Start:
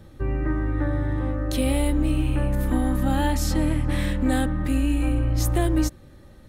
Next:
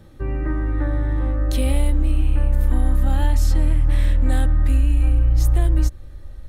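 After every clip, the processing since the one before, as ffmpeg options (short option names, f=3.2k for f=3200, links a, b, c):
-af "asubboost=boost=10.5:cutoff=57,acompressor=threshold=-12dB:ratio=6"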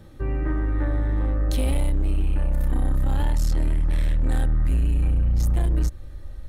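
-af "asoftclip=type=tanh:threshold=-16dB"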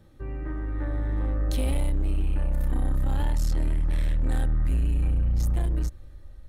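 -af "dynaudnorm=f=200:g=9:m=5.5dB,volume=-8.5dB"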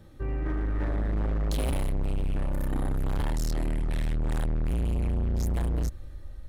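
-af "volume=28.5dB,asoftclip=hard,volume=-28.5dB,volume=3.5dB"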